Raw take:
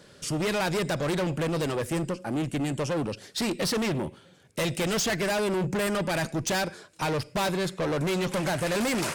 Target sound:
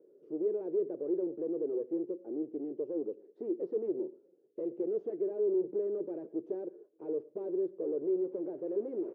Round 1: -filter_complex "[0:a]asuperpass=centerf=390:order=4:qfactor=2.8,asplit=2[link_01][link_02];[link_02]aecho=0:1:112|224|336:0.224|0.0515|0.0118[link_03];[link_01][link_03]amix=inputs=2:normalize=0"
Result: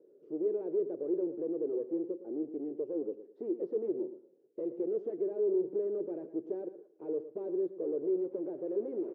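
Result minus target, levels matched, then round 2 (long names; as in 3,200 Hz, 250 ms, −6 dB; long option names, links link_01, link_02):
echo-to-direct +10.5 dB
-filter_complex "[0:a]asuperpass=centerf=390:order=4:qfactor=2.8,asplit=2[link_01][link_02];[link_02]aecho=0:1:112|224:0.0668|0.0154[link_03];[link_01][link_03]amix=inputs=2:normalize=0"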